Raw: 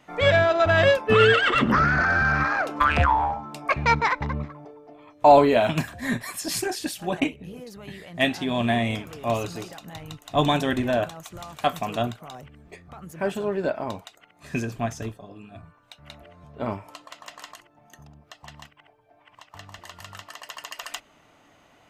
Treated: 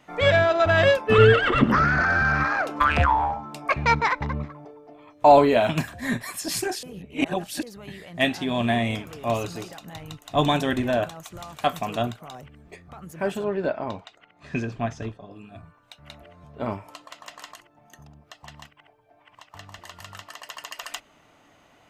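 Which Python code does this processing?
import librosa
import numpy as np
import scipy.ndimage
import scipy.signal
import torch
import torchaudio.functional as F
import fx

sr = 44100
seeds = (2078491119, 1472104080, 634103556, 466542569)

y = fx.tilt_eq(x, sr, slope=-2.5, at=(1.18, 1.64))
y = fx.lowpass(y, sr, hz=4400.0, slope=12, at=(13.44, 15.31))
y = fx.edit(y, sr, fx.reverse_span(start_s=6.83, length_s=0.8), tone=tone)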